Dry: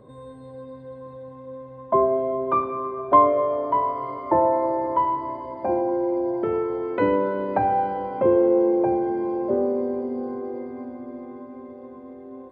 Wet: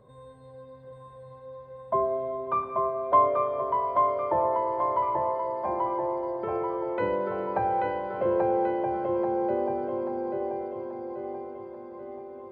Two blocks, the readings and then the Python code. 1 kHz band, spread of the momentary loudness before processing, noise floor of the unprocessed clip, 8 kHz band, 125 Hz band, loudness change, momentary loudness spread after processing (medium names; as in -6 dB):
-3.0 dB, 21 LU, -42 dBFS, no reading, -4.5 dB, -5.0 dB, 18 LU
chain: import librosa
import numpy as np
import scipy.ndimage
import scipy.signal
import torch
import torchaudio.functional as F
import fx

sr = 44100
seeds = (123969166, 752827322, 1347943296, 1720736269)

y = fx.peak_eq(x, sr, hz=290.0, db=-11.0, octaves=0.66)
y = fx.echo_feedback(y, sr, ms=835, feedback_pct=51, wet_db=-3.5)
y = y * 10.0 ** (-5.0 / 20.0)